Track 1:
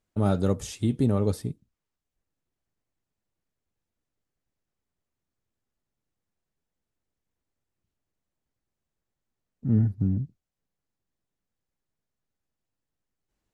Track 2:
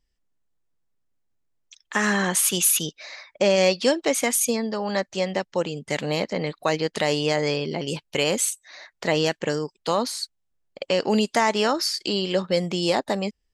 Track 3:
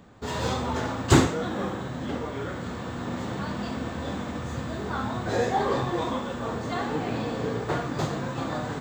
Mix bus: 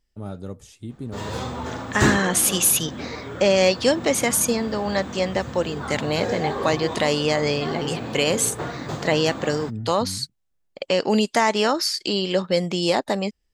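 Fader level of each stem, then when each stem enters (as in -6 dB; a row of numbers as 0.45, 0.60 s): -10.0, +1.5, -2.0 dB; 0.00, 0.00, 0.90 s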